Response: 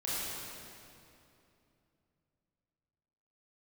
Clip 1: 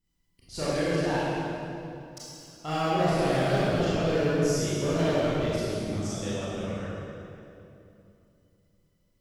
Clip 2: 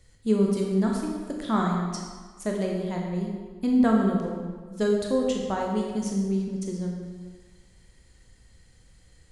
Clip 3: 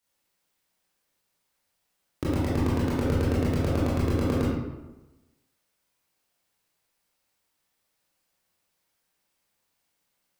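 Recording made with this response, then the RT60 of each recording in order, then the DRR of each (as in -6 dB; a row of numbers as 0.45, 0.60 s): 1; 2.8, 1.5, 1.1 s; -9.5, -0.5, -9.0 dB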